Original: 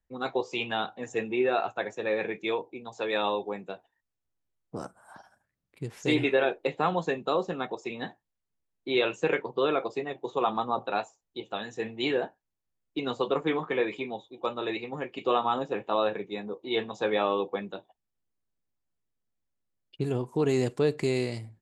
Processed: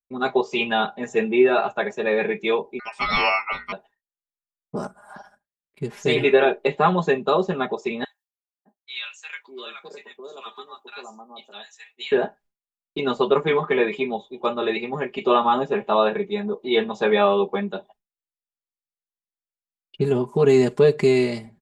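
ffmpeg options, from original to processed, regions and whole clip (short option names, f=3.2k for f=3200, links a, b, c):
-filter_complex "[0:a]asettb=1/sr,asplit=3[a][b][c];[a]atrim=end=2.794[d];[b]atrim=start=2.79:end=3.72,asetpts=PTS-STARTPTS,afade=t=in:d=0.004:c=qsin,afade=t=out:st=0.926:d=0.004:c=qsin,equalizer=f=1.2k:w=0.92:g=5,aeval=exprs='val(0)*sin(2*PI*1700*n/s)':c=same,bandreject=f=60:t=h:w=6,bandreject=f=120:t=h:w=6,bandreject=f=180:t=h:w=6,bandreject=f=240:t=h:w=6,bandreject=f=300:t=h:w=6,bandreject=f=360:t=h:w=6,bandreject=f=420:t=h:w=6,bandreject=f=480:t=h:w=6[e];[c]atrim=start=3.716[f];[d][e]acrossfade=d=0.004:c1=hsin:c2=qsin[g];[g][f]acrossfade=d=0.004:c1=qsin:c2=hsin,asettb=1/sr,asplit=3[h][i][j];[h]atrim=end=8.044[k];[i]atrim=start=8.04:end=12.12,asetpts=PTS-STARTPTS,afade=t=in:d=0.004:c=qsin,afade=t=out:st=4.076:d=0.004:c=qsin,highpass=f=210:t=q:w=2.5,aderivative,acrossover=split=900[l][m];[l]adelay=610[n];[n][m]amix=inputs=2:normalize=0,atrim=end_sample=179928[o];[j]atrim=start=12.116[p];[k][o]acrossfade=d=0.004:c1=hsin:c2=qsin[q];[q][p]acrossfade=d=0.004:c1=qsin:c2=hsin,highshelf=f=4.7k:g=-7,aecho=1:1:4.9:0.93,agate=range=-33dB:threshold=-54dB:ratio=3:detection=peak,volume=6dB"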